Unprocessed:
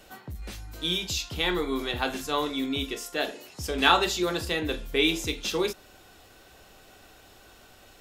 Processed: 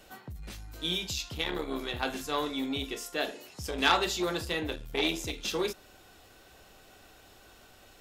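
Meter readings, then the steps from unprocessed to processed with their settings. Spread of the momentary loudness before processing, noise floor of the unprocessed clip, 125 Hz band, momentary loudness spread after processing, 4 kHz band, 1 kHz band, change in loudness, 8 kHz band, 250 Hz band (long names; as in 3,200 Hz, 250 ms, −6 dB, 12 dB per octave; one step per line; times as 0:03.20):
16 LU, −54 dBFS, −4.0 dB, 15 LU, −4.5 dB, −4.5 dB, −4.5 dB, −3.5 dB, −4.5 dB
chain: saturating transformer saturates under 2,000 Hz
level −2.5 dB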